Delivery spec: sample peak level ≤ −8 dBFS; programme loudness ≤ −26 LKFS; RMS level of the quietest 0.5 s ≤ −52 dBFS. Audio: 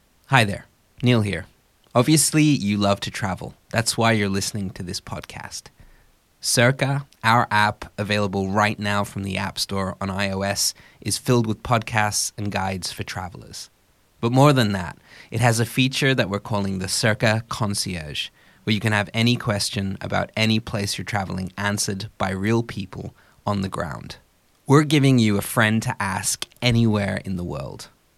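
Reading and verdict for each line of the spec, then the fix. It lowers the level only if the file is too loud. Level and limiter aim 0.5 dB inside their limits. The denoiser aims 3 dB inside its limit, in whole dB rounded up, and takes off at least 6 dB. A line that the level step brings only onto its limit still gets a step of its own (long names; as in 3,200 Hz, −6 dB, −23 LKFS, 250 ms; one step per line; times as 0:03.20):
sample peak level −2.0 dBFS: out of spec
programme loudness −21.5 LKFS: out of spec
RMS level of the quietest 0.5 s −60 dBFS: in spec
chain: level −5 dB
brickwall limiter −8.5 dBFS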